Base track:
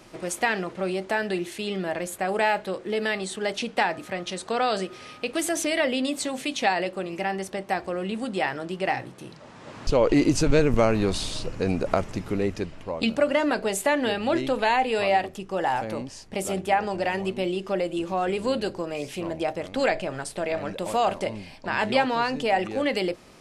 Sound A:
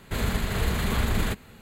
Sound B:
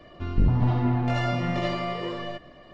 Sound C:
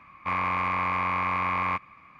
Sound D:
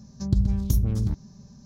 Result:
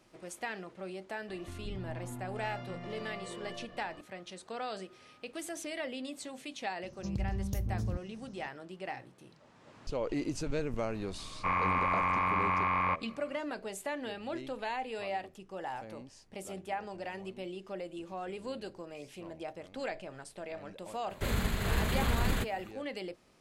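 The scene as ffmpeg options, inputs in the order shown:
-filter_complex "[0:a]volume=0.188[s0];[2:a]acompressor=threshold=0.0141:ratio=6:attack=3.2:release=140:knee=1:detection=peak[s1];[4:a]acompressor=threshold=0.0794:ratio=6:attack=3.2:release=140:knee=1:detection=peak[s2];[3:a]lowpass=f=2800:p=1[s3];[s1]atrim=end=2.73,asetpts=PTS-STARTPTS,volume=0.631,afade=t=in:d=0.004:c=hsin,afade=t=out:st=2.726:d=0.004:c=hsin,adelay=1280[s4];[s2]atrim=end=1.65,asetpts=PTS-STARTPTS,volume=0.447,afade=t=in:d=0.004:c=hsin,afade=t=out:st=1.646:d=0.004:c=hsin,adelay=6830[s5];[s3]atrim=end=2.19,asetpts=PTS-STARTPTS,volume=0.794,afade=t=in:d=0.004:c=hsin,afade=t=out:st=2.186:d=0.004:c=hsin,adelay=11180[s6];[1:a]atrim=end=1.61,asetpts=PTS-STARTPTS,volume=0.562,afade=t=in:d=0.004:c=hsin,afade=t=out:st=1.606:d=0.004:c=hsin,adelay=21100[s7];[s0][s4][s5][s6][s7]amix=inputs=5:normalize=0"

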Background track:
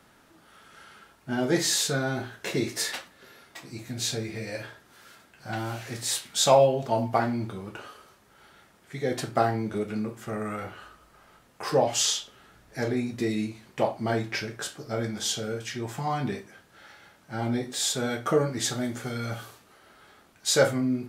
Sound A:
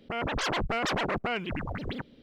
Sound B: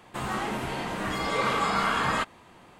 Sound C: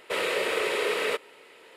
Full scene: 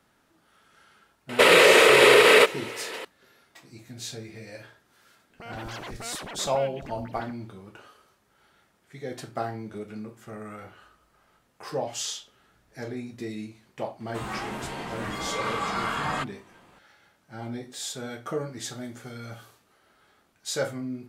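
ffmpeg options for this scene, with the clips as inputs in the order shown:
-filter_complex "[0:a]volume=0.422[s0];[3:a]alimiter=level_in=10:limit=0.891:release=50:level=0:latency=1,atrim=end=1.76,asetpts=PTS-STARTPTS,volume=0.562,afade=t=in:d=0.004:c=hsin,afade=t=out:st=1.756:d=0.004:c=hsin,adelay=1290[s1];[1:a]atrim=end=2.22,asetpts=PTS-STARTPTS,volume=0.316,afade=t=in:d=0.004:c=hsin,afade=t=out:st=2.216:d=0.004:c=hsin,adelay=5300[s2];[2:a]atrim=end=2.79,asetpts=PTS-STARTPTS,volume=0.668,afade=t=in:d=0.004:c=hsin,afade=t=out:st=2.786:d=0.004:c=hsin,adelay=14000[s3];[s0][s1][s2][s3]amix=inputs=4:normalize=0"

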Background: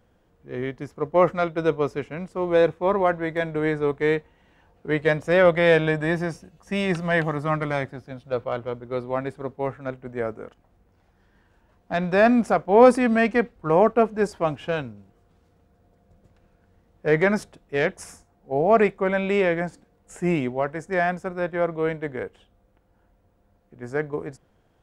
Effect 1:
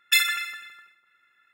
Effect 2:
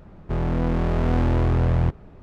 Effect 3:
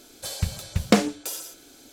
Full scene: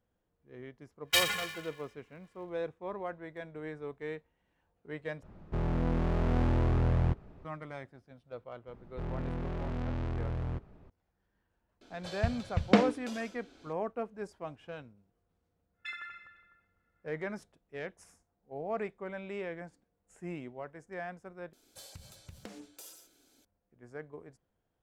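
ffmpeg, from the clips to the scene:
-filter_complex "[1:a]asplit=2[s0][s1];[2:a]asplit=2[s2][s3];[3:a]asplit=2[s4][s5];[0:a]volume=0.126[s6];[s0]aeval=exprs='val(0)*sgn(sin(2*PI*310*n/s))':c=same[s7];[s3]asoftclip=type=tanh:threshold=0.0944[s8];[s4]lowpass=3200[s9];[s1]lowpass=1200[s10];[s5]acompressor=threshold=0.0447:ratio=6:attack=3.2:release=140:knee=1:detection=peak[s11];[s6]asplit=3[s12][s13][s14];[s12]atrim=end=5.234[s15];[s2]atrim=end=2.22,asetpts=PTS-STARTPTS,volume=0.422[s16];[s13]atrim=start=7.446:end=21.534[s17];[s11]atrim=end=1.92,asetpts=PTS-STARTPTS,volume=0.15[s18];[s14]atrim=start=23.446[s19];[s7]atrim=end=1.53,asetpts=PTS-STARTPTS,volume=0.447,afade=t=in:d=0.1,afade=t=out:st=1.43:d=0.1,adelay=1010[s20];[s8]atrim=end=2.22,asetpts=PTS-STARTPTS,volume=0.299,afade=t=in:d=0.004:c=hsin,afade=t=out:st=2.216:d=0.004:c=hsin,adelay=8680[s21];[s9]atrim=end=1.92,asetpts=PTS-STARTPTS,volume=0.562,afade=t=in:d=0.004:c=hsin,afade=t=out:st=1.916:d=0.004:c=hsin,adelay=11810[s22];[s10]atrim=end=1.53,asetpts=PTS-STARTPTS,volume=0.376,afade=t=in:d=0.1,afade=t=out:st=1.43:d=0.1,adelay=15730[s23];[s15][s16]acrossfade=d=0.004:c1=hsin:c2=hsin[s24];[s24][s17]acrossfade=d=0.004:c1=hsin:c2=hsin[s25];[s25][s18]acrossfade=d=0.004:c1=hsin:c2=hsin[s26];[s26][s19]acrossfade=d=0.004:c1=hsin:c2=hsin[s27];[s27][s20][s21][s22][s23]amix=inputs=5:normalize=0"

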